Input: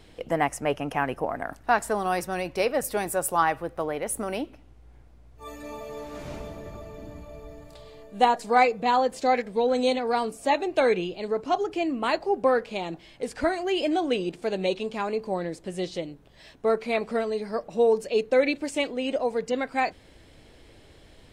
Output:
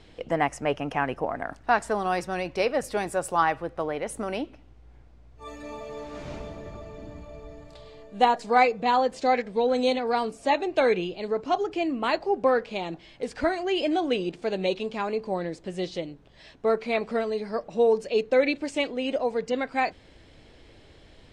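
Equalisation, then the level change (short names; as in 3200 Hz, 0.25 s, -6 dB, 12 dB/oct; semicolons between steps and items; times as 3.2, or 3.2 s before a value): air absorption 95 m; high shelf 4100 Hz +6 dB; 0.0 dB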